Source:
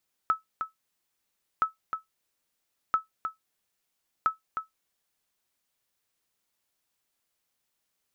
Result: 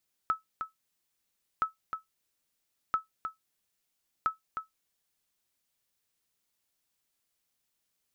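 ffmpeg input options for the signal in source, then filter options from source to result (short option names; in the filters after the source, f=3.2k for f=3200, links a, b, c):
-f lavfi -i "aevalsrc='0.178*(sin(2*PI*1300*mod(t,1.32))*exp(-6.91*mod(t,1.32)/0.14)+0.422*sin(2*PI*1300*max(mod(t,1.32)-0.31,0))*exp(-6.91*max(mod(t,1.32)-0.31,0)/0.14))':d=5.28:s=44100"
-af "equalizer=f=910:w=0.42:g=-4"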